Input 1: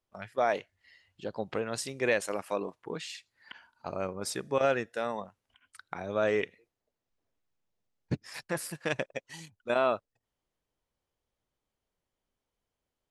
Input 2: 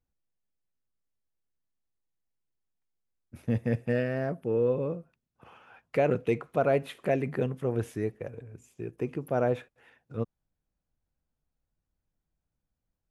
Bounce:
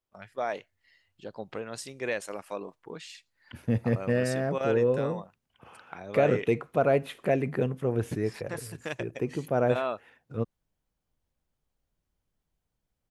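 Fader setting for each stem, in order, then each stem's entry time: -4.0 dB, +1.5 dB; 0.00 s, 0.20 s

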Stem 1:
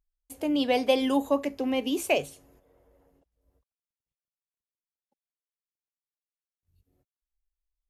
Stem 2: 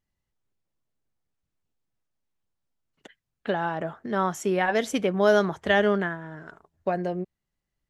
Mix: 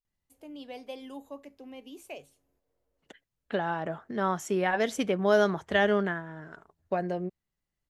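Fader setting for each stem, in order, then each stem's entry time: -18.0 dB, -3.0 dB; 0.00 s, 0.05 s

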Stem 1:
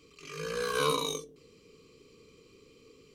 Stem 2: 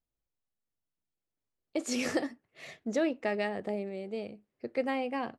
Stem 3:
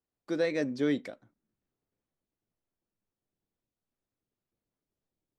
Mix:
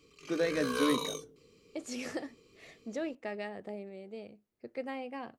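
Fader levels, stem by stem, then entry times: -4.0 dB, -7.5 dB, -1.5 dB; 0.00 s, 0.00 s, 0.00 s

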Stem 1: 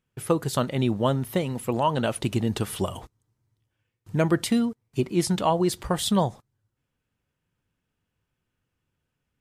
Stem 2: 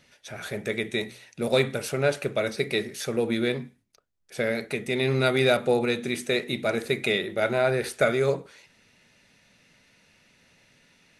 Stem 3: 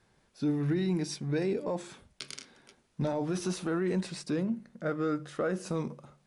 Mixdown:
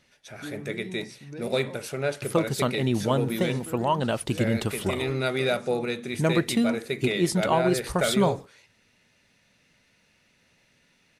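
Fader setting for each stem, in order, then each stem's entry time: -1.0 dB, -4.0 dB, -10.0 dB; 2.05 s, 0.00 s, 0.00 s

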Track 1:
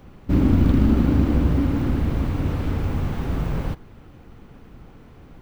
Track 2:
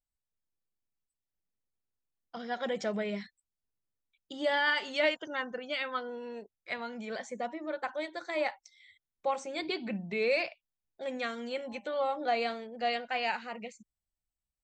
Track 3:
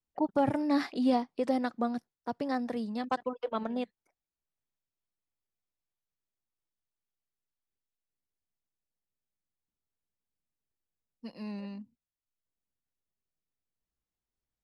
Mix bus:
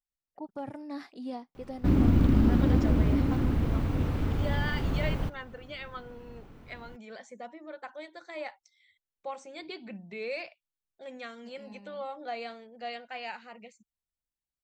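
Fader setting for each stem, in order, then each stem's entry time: -5.0 dB, -7.0 dB, -11.5 dB; 1.55 s, 0.00 s, 0.20 s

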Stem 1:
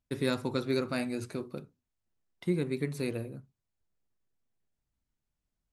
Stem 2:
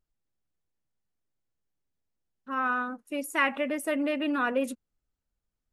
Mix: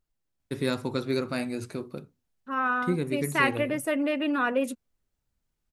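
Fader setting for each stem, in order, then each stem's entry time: +2.0 dB, +1.5 dB; 0.40 s, 0.00 s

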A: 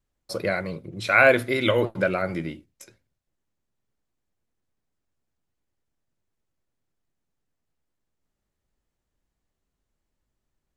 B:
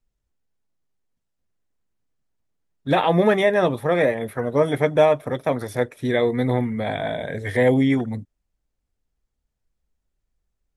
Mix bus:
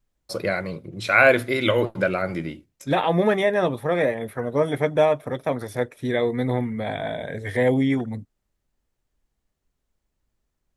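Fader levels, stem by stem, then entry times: +1.0 dB, -2.5 dB; 0.00 s, 0.00 s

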